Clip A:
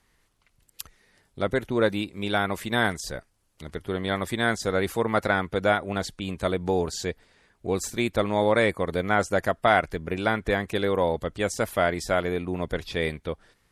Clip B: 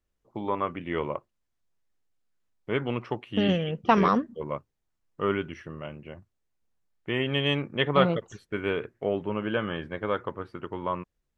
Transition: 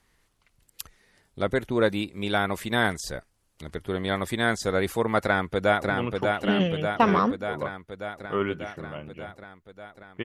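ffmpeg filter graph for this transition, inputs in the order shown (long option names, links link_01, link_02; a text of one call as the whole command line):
ffmpeg -i cue0.wav -i cue1.wav -filter_complex "[0:a]apad=whole_dur=10.24,atrim=end=10.24,atrim=end=5.902[link_01];[1:a]atrim=start=2.788:end=7.13[link_02];[link_01][link_02]acrossfade=duration=0.004:curve1=hsin:curve2=hsin,asplit=2[link_03][link_04];[link_04]afade=type=in:start_time=5.22:duration=0.01,afade=type=out:start_time=5.9:duration=0.01,aecho=0:1:590|1180|1770|2360|2950|3540|4130|4720|5310|5900|6490|7080:0.668344|0.467841|0.327489|0.229242|0.160469|0.112329|0.07863|0.055041|0.0385287|0.0269701|0.0188791|0.0132153[link_05];[link_03][link_05]amix=inputs=2:normalize=0" out.wav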